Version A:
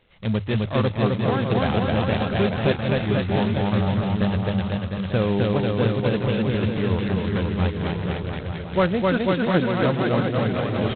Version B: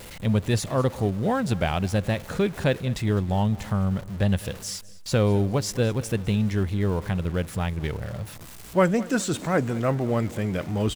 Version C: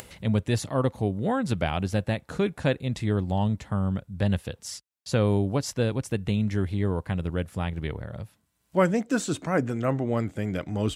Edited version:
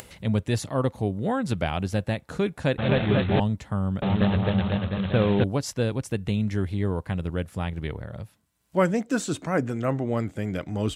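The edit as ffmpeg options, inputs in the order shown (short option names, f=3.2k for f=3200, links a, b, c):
-filter_complex "[0:a]asplit=2[a][b];[2:a]asplit=3[c][d][e];[c]atrim=end=2.782[f];[a]atrim=start=2.778:end=3.402[g];[d]atrim=start=3.398:end=4.022[h];[b]atrim=start=4.018:end=5.442[i];[e]atrim=start=5.438[j];[f][g]acrossfade=d=0.004:c1=hsin:c2=hsin[k];[k][h]acrossfade=d=0.004:c1=hsin:c2=hsin[l];[l][i]acrossfade=d=0.004:c1=hsin:c2=hsin[m];[m][j]acrossfade=d=0.004:c1=hsin:c2=hsin"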